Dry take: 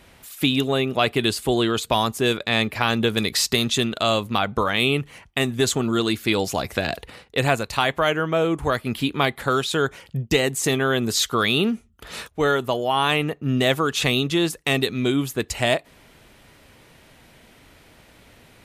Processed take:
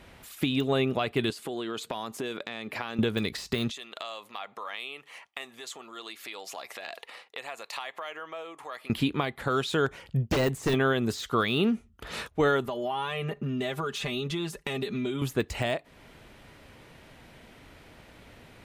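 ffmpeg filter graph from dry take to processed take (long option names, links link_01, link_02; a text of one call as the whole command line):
ffmpeg -i in.wav -filter_complex "[0:a]asettb=1/sr,asplit=3[link_01][link_02][link_03];[link_01]atrim=end=1.304[link_04];[link_02]atrim=start=1.3:end=2.99,asetpts=PTS-STARTPTS,afade=type=in:duration=0.004:curve=qsin,afade=type=out:start_time=1.686:duration=0.004:curve=qsin,highpass=200,acompressor=threshold=-29dB:ratio=8:attack=3.2:release=140:knee=1:detection=peak[link_05];[link_03]atrim=start=2.986[link_06];[link_04][link_05]acrossfade=duration=0.004:curve1=hsin:curve2=qsin[link_07];[link_07][link_06]acrossfade=duration=0.004:curve1=qsin:curve2=hsin,asettb=1/sr,asplit=3[link_08][link_09][link_10];[link_08]atrim=end=3.714[link_11];[link_09]atrim=start=3.71:end=8.9,asetpts=PTS-STARTPTS,afade=type=in:duration=0.004:curve=qsin,afade=type=out:start_time=5.186:duration=0.004:curve=qsin,bandreject=frequency=1500:width=8.7,acompressor=threshold=-29dB:ratio=12:attack=3.2:release=140:knee=1:detection=peak,highpass=750[link_12];[link_10]atrim=start=8.896[link_13];[link_11][link_12]acrossfade=duration=0.004:curve1=hsin:curve2=qsin[link_14];[link_14][link_13]acrossfade=duration=0.004:curve1=qsin:curve2=hsin,asettb=1/sr,asplit=3[link_15][link_16][link_17];[link_15]atrim=end=9.864[link_18];[link_16]atrim=start=9.86:end=10.74,asetpts=PTS-STARTPTS,afade=type=in:duration=0.004:curve=qsin,afade=type=out:start_time=0.876:duration=0.004:curve=qsin,asubboost=boost=8.5:cutoff=100,aeval=exprs='0.133*(abs(mod(val(0)/0.133+3,4)-2)-1)':channel_layout=same[link_19];[link_17]atrim=start=10.736[link_20];[link_18][link_19]acrossfade=duration=0.004:curve1=hsin:curve2=qsin[link_21];[link_21][link_20]acrossfade=duration=0.004:curve1=qsin:curve2=hsin,asettb=1/sr,asplit=3[link_22][link_23][link_24];[link_22]atrim=end=12.654[link_25];[link_23]atrim=start=12.65:end=15.22,asetpts=PTS-STARTPTS,afade=type=in:duration=0.004:curve=qsin,afade=type=out:start_time=2.566:duration=0.004:curve=qsin,aecho=1:1:5:0.95,atrim=end_sample=113337,acompressor=threshold=-28dB:ratio=6:attack=3.2:release=140:knee=1:detection=peak[link_26];[link_24]atrim=start=15.216[link_27];[link_25][link_26]acrossfade=duration=0.004:curve1=hsin:curve2=qsin[link_28];[link_28][link_27]acrossfade=duration=0.004:curve1=qsin:curve2=hsin,alimiter=limit=-14.5dB:level=0:latency=1:release=341,highshelf=frequency=4800:gain=-8,deesser=0.75" out.wav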